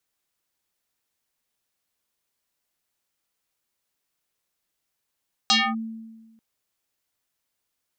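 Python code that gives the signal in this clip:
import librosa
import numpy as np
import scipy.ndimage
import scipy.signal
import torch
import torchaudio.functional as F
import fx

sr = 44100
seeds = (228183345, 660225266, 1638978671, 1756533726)

y = fx.fm2(sr, length_s=0.89, level_db=-14, carrier_hz=224.0, ratio=4.51, index=5.5, index_s=0.25, decay_s=1.32, shape='linear')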